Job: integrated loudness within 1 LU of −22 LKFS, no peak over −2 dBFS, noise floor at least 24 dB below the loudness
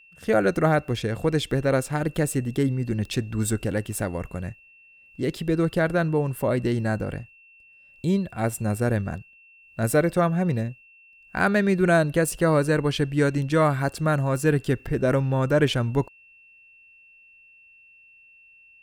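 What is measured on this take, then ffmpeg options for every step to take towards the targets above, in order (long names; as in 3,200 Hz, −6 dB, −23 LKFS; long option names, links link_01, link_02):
interfering tone 2,700 Hz; level of the tone −51 dBFS; integrated loudness −24.0 LKFS; sample peak −7.5 dBFS; target loudness −22.0 LKFS
→ -af "bandreject=frequency=2700:width=30"
-af "volume=2dB"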